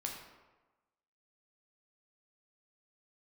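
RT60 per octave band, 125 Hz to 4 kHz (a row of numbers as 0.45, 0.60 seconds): 1.1, 1.1, 1.2, 1.2, 0.95, 0.70 seconds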